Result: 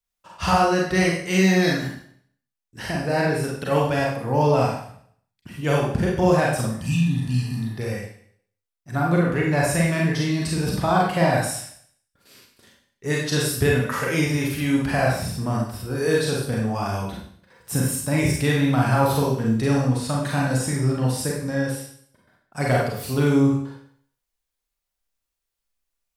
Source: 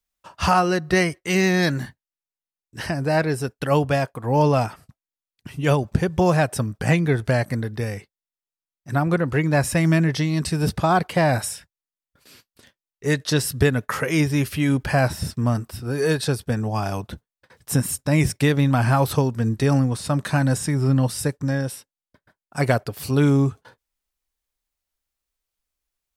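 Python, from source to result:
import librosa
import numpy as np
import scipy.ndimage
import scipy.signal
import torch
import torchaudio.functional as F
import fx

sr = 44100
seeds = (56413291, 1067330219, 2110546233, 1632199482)

y = fx.spec_repair(x, sr, seeds[0], start_s=6.71, length_s=0.99, low_hz=300.0, high_hz=2400.0, source='after')
y = fx.rev_schroeder(y, sr, rt60_s=0.6, comb_ms=32, drr_db=-3.0)
y = y * 10.0 ** (-4.5 / 20.0)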